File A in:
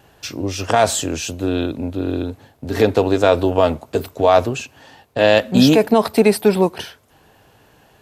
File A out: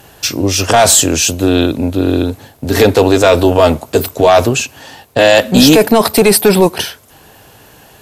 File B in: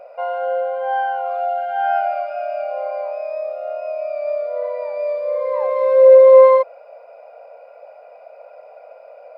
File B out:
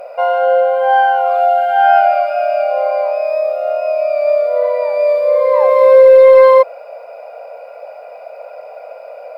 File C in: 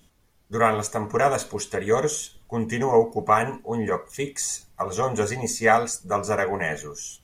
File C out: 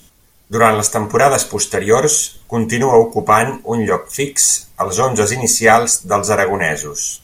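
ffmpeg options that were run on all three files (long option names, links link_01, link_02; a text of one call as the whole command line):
ffmpeg -i in.wav -af "aemphasis=mode=production:type=cd,apsyclip=11dB,volume=-1.5dB" out.wav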